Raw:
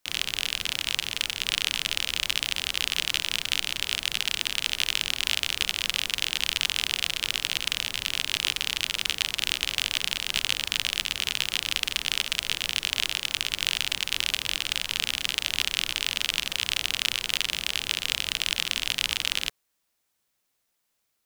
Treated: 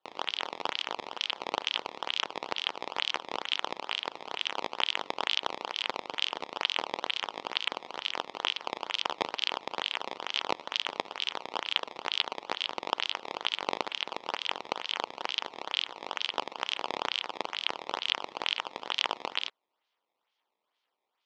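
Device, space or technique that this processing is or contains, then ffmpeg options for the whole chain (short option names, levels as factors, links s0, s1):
circuit-bent sampling toy: -af "acrusher=samples=17:mix=1:aa=0.000001:lfo=1:lforange=27.2:lforate=2.2,highpass=520,equalizer=f=640:t=q:w=4:g=-3,equalizer=f=920:t=q:w=4:g=4,equalizer=f=1600:t=q:w=4:g=-5,equalizer=f=3200:t=q:w=4:g=6,lowpass=f=5100:w=0.5412,lowpass=f=5100:w=1.3066,volume=0.562"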